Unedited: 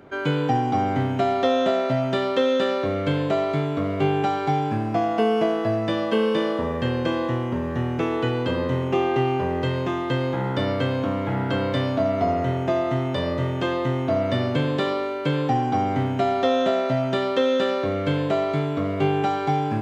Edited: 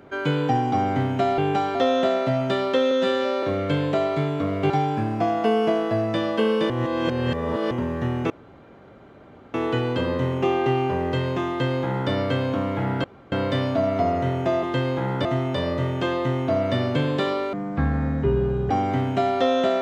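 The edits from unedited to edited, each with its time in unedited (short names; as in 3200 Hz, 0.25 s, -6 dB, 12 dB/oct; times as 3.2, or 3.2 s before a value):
2.54–2.8 stretch 2×
4.07–4.44 move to 1.38
6.44–7.45 reverse
8.04 insert room tone 1.24 s
9.99–10.61 copy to 12.85
11.54 insert room tone 0.28 s
15.13–15.73 speed 51%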